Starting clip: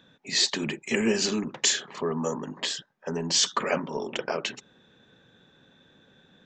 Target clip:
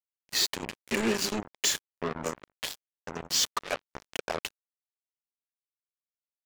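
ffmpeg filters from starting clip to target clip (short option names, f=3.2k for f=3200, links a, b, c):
-filter_complex "[0:a]asplit=3[a][b][c];[a]afade=t=out:st=3.54:d=0.02[d];[b]highpass=f=490:p=1,afade=t=in:st=3.54:d=0.02,afade=t=out:st=4.08:d=0.02[e];[c]afade=t=in:st=4.08:d=0.02[f];[d][e][f]amix=inputs=3:normalize=0,acrusher=bits=3:mix=0:aa=0.5,volume=-3.5dB"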